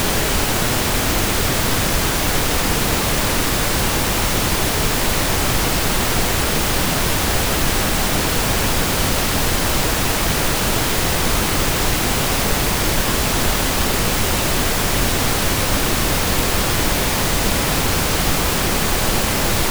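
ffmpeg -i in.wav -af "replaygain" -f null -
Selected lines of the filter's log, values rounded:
track_gain = +3.4 dB
track_peak = 0.436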